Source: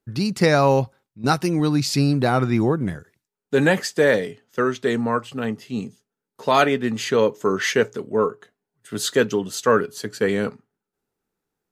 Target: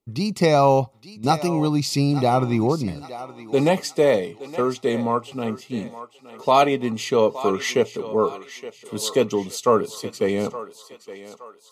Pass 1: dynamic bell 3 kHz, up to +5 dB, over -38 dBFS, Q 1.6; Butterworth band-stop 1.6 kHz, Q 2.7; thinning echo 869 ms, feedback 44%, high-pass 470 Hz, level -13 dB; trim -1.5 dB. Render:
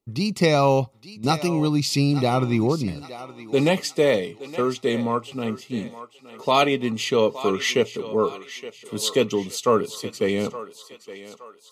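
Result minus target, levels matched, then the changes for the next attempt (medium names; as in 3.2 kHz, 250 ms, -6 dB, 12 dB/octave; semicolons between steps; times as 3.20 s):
4 kHz band +4.0 dB
change: dynamic bell 770 Hz, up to +5 dB, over -38 dBFS, Q 1.6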